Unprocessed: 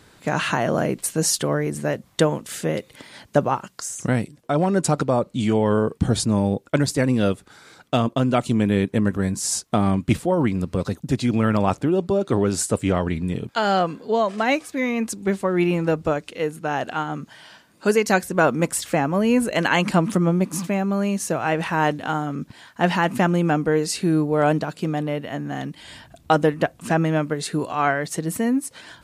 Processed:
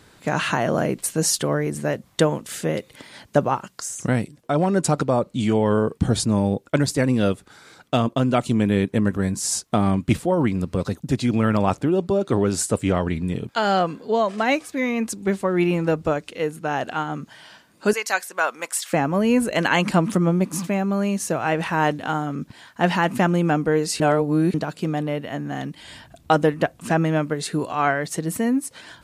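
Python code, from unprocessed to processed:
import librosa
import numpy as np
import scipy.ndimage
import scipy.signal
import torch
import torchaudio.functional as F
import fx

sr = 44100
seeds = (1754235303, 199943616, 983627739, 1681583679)

y = fx.highpass(x, sr, hz=900.0, slope=12, at=(17.93, 18.93))
y = fx.edit(y, sr, fx.reverse_span(start_s=24.0, length_s=0.54), tone=tone)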